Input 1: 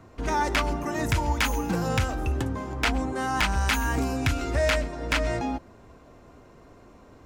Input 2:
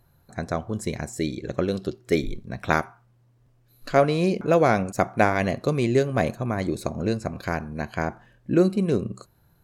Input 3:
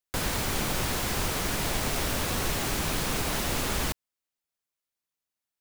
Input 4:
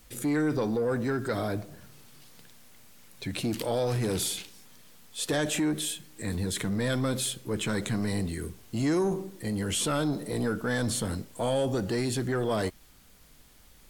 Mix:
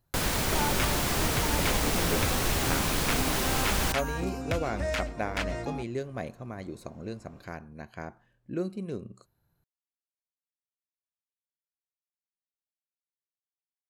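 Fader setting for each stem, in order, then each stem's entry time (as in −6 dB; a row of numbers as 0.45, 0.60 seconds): −7.5 dB, −13.0 dB, +1.0 dB, muted; 0.25 s, 0.00 s, 0.00 s, muted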